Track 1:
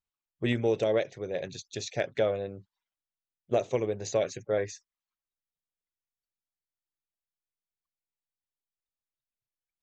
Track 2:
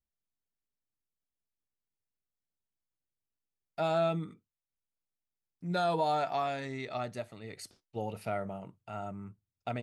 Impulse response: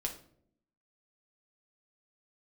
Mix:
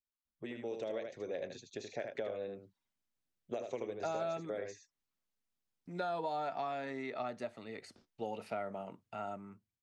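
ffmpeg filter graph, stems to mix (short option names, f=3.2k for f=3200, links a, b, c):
-filter_complex "[0:a]acompressor=threshold=-31dB:ratio=2,volume=-10.5dB,asplit=2[a][b];[b]volume=-7dB[c];[1:a]lowpass=7.2k,adelay=250,volume=-6dB[d];[c]aecho=0:1:77:1[e];[a][d][e]amix=inputs=3:normalize=0,dynaudnorm=f=150:g=11:m=7dB,equalizer=f=230:w=2.2:g=7,acrossover=split=310|2200[f][g][h];[f]acompressor=threshold=-57dB:ratio=4[i];[g]acompressor=threshold=-36dB:ratio=4[j];[h]acompressor=threshold=-57dB:ratio=4[k];[i][j][k]amix=inputs=3:normalize=0"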